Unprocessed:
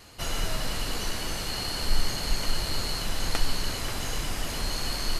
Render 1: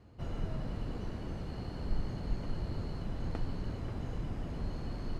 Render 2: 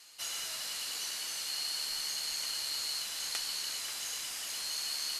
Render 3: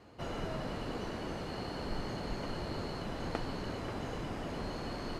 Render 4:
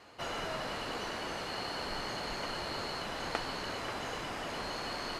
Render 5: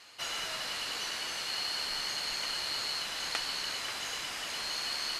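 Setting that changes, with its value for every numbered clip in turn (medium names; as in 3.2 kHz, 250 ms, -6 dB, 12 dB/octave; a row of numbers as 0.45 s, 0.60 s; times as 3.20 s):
band-pass filter, frequency: 120 Hz, 7.8 kHz, 320 Hz, 800 Hz, 2.8 kHz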